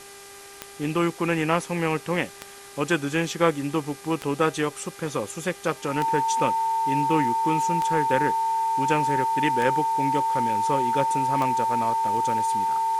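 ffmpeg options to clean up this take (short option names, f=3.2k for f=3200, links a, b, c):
-af "adeclick=t=4,bandreject=f=398.9:t=h:w=4,bandreject=f=797.8:t=h:w=4,bandreject=f=1.1967k:t=h:w=4,bandreject=f=1.5956k:t=h:w=4,bandreject=f=1.9945k:t=h:w=4,bandreject=f=2.3934k:t=h:w=4,bandreject=f=900:w=30,afwtdn=0.0063"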